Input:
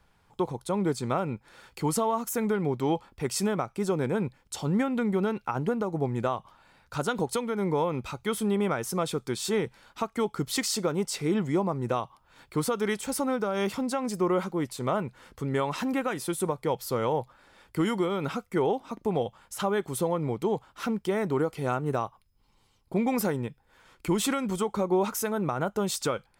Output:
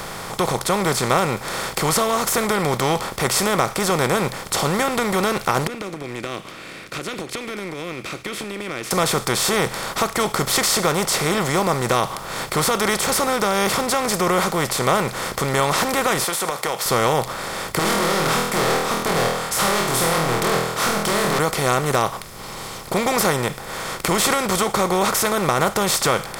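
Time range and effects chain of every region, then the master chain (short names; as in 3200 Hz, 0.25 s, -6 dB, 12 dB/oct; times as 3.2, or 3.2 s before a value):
5.67–8.91 double band-pass 870 Hz, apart 3 oct + compressor, threshold -45 dBFS
16.24–16.86 HPF 660 Hz + compressor, threshold -36 dBFS
17.79–21.39 HPF 61 Hz + hard clip -32.5 dBFS + flutter echo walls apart 4.2 m, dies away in 0.4 s
whole clip: per-bin compression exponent 0.4; bell 270 Hz -11 dB 1.4 oct; notch 890 Hz, Q 14; gain +6.5 dB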